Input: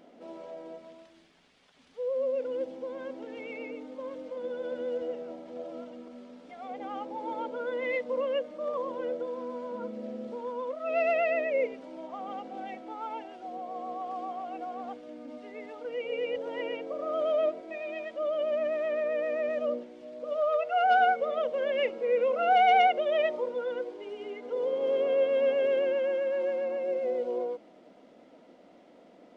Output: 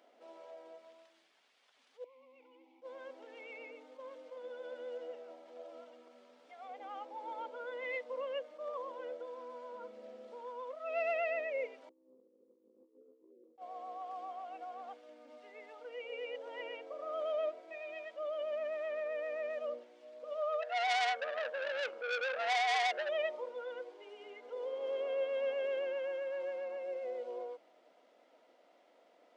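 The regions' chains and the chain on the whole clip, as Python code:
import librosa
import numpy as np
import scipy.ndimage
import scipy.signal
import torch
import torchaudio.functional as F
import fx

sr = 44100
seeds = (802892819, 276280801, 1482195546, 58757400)

y = fx.chain(x, sr, fx.vowel_filter(vowel='u'),
    fx.high_shelf(hz=2000.0, db=11.0),
    fx.env_flatten(amount_pct=50), at=(2.04, 2.82))
y = fx.chain(y, sr, fx.steep_lowpass(hz=510.0, slope=96),
    fx.over_compress(threshold_db=-50.0, ratio=-0.5), at=(11.89, 13.58))
y = fx.chain(y, sr, fx.peak_eq(hz=510.0, db=3.0, octaves=1.4),
    fx.transformer_sat(knee_hz=2800.0), at=(20.62, 23.09))
y = scipy.signal.sosfilt(scipy.signal.butter(2, 580.0, 'highpass', fs=sr, output='sos'), y)
y = fx.attack_slew(y, sr, db_per_s=410.0)
y = y * librosa.db_to_amplitude(-6.0)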